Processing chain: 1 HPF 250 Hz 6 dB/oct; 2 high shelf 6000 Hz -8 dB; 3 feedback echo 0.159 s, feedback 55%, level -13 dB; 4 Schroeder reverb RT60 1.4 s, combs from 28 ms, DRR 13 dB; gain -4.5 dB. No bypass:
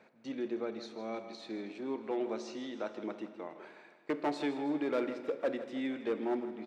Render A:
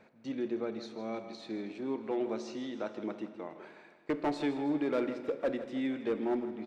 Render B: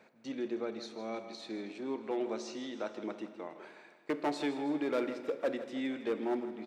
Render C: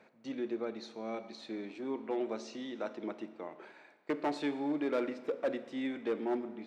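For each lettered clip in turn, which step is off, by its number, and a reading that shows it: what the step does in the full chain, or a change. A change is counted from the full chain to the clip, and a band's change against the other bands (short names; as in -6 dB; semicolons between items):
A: 1, 125 Hz band +5.0 dB; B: 2, 4 kHz band +2.0 dB; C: 3, echo-to-direct -9.0 dB to -13.0 dB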